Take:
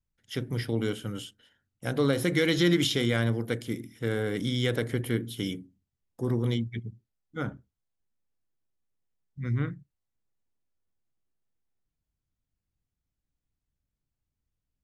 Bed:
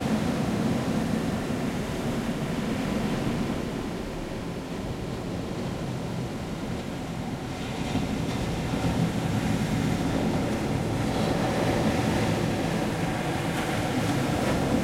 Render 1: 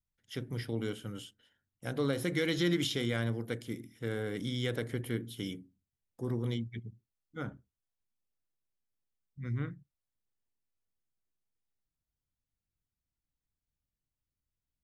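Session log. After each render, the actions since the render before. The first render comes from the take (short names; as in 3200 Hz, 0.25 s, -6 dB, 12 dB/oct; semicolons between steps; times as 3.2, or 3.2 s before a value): gain -6.5 dB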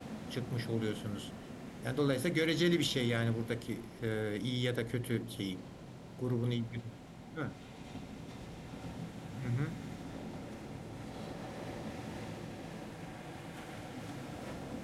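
add bed -18.5 dB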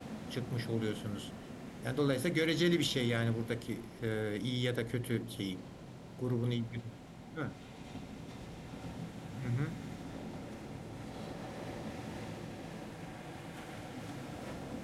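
nothing audible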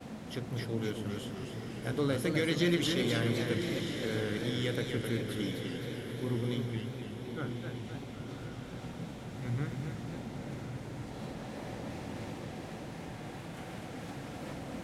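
diffused feedback echo 1.041 s, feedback 43%, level -7.5 dB; warbling echo 0.257 s, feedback 55%, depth 180 cents, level -6 dB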